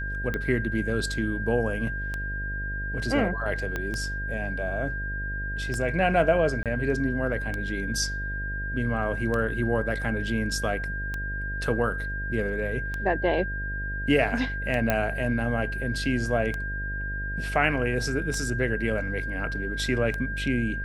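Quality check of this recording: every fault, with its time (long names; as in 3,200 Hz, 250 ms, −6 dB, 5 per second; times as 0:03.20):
mains buzz 50 Hz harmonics 14 −33 dBFS
scratch tick 33 1/3 rpm −17 dBFS
whistle 1,600 Hz −32 dBFS
0:03.76: click −16 dBFS
0:06.63–0:06.66: drop-out 27 ms
0:14.90: click −9 dBFS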